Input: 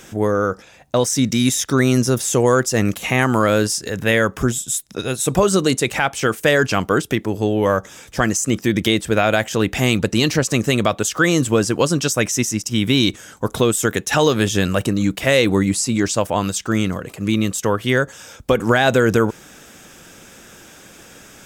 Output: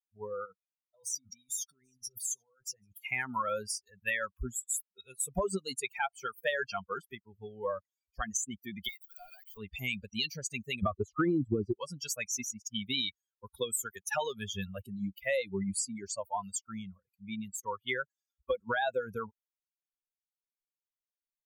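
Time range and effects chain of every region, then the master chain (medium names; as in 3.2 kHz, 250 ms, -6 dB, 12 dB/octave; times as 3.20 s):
0.45–2.93 s: compressor with a negative ratio -22 dBFS + delay 787 ms -13 dB + flange 1.8 Hz, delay 5.8 ms, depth 1.5 ms, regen -45%
8.88–9.57 s: de-esser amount 95% + high-pass 1.1 kHz + companded quantiser 2-bit
10.83–11.73 s: tilt EQ -3 dB/octave + upward compressor, threshold -29 dBFS + small resonant body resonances 340/1200/4000 Hz, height 9 dB, ringing for 25 ms
whole clip: expander on every frequency bin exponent 3; compression, threshold -25 dBFS; band-stop 5.2 kHz, Q 6.9; trim -3 dB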